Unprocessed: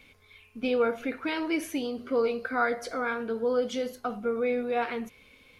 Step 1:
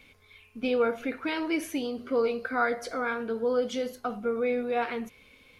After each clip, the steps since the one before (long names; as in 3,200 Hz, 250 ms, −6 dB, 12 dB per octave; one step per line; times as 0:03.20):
no processing that can be heard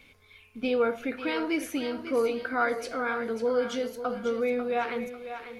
feedback echo with a high-pass in the loop 545 ms, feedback 35%, high-pass 340 Hz, level −9 dB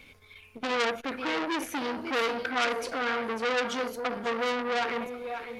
saturating transformer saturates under 3,300 Hz
level +4 dB